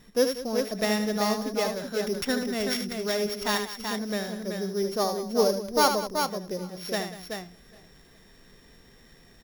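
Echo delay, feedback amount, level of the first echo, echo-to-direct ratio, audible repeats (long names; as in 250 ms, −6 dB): 76 ms, repeats not evenly spaced, −8.0 dB, −3.0 dB, 7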